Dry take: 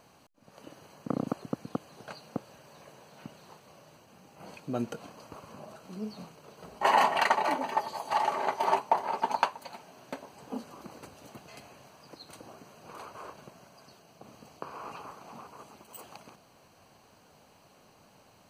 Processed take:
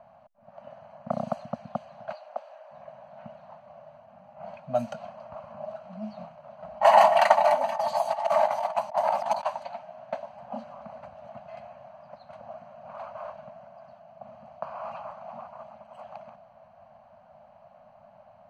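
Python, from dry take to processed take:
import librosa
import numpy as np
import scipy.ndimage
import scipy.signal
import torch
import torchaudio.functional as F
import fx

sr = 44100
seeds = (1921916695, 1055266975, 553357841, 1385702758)

y = fx.highpass(x, sr, hz=410.0, slope=24, at=(2.12, 2.71))
y = fx.over_compress(y, sr, threshold_db=-32.0, ratio=-0.5, at=(7.75, 9.61), fade=0.02)
y = scipy.signal.sosfilt(scipy.signal.cheby1(3, 1.0, [230.0, 590.0], 'bandstop', fs=sr, output='sos'), y)
y = fx.peak_eq(y, sr, hz=650.0, db=14.0, octaves=0.76)
y = fx.env_lowpass(y, sr, base_hz=1500.0, full_db=-22.0)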